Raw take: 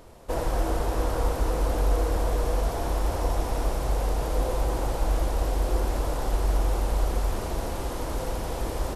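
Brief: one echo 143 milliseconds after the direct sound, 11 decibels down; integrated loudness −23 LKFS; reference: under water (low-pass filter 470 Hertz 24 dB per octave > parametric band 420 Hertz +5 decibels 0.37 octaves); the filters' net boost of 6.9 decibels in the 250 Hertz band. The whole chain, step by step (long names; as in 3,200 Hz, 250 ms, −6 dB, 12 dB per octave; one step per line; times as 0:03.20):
low-pass filter 470 Hz 24 dB per octave
parametric band 250 Hz +8.5 dB
parametric band 420 Hz +5 dB 0.37 octaves
single-tap delay 143 ms −11 dB
level +4.5 dB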